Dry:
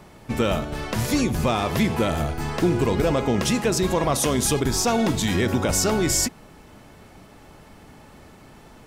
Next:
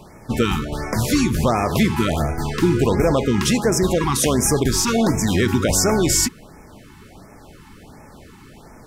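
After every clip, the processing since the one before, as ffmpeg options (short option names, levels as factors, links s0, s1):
-af "afftfilt=real='re*(1-between(b*sr/1024,540*pow(3700/540,0.5+0.5*sin(2*PI*1.4*pts/sr))/1.41,540*pow(3700/540,0.5+0.5*sin(2*PI*1.4*pts/sr))*1.41))':imag='im*(1-between(b*sr/1024,540*pow(3700/540,0.5+0.5*sin(2*PI*1.4*pts/sr))/1.41,540*pow(3700/540,0.5+0.5*sin(2*PI*1.4*pts/sr))*1.41))':win_size=1024:overlap=0.75,volume=1.58"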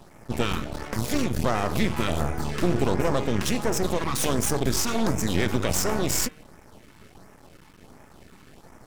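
-af "aeval=exprs='max(val(0),0)':c=same,bandreject=f=153.2:t=h:w=4,bandreject=f=306.4:t=h:w=4,bandreject=f=459.6:t=h:w=4,bandreject=f=612.8:t=h:w=4,bandreject=f=766:t=h:w=4,bandreject=f=919.2:t=h:w=4,bandreject=f=1072.4:t=h:w=4,bandreject=f=1225.6:t=h:w=4,bandreject=f=1378.8:t=h:w=4,bandreject=f=1532:t=h:w=4,bandreject=f=1685.2:t=h:w=4,bandreject=f=1838.4:t=h:w=4,bandreject=f=1991.6:t=h:w=4,bandreject=f=2144.8:t=h:w=4,bandreject=f=2298:t=h:w=4,bandreject=f=2451.2:t=h:w=4,bandreject=f=2604.4:t=h:w=4,bandreject=f=2757.6:t=h:w=4,bandreject=f=2910.8:t=h:w=4,bandreject=f=3064:t=h:w=4,bandreject=f=3217.2:t=h:w=4,bandreject=f=3370.4:t=h:w=4,bandreject=f=3523.6:t=h:w=4,bandreject=f=3676.8:t=h:w=4,volume=0.75"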